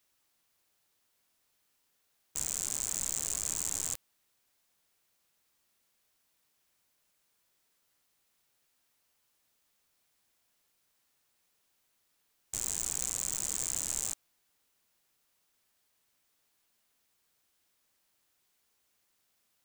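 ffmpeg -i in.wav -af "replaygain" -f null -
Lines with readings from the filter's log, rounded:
track_gain = +24.8 dB
track_peak = 0.075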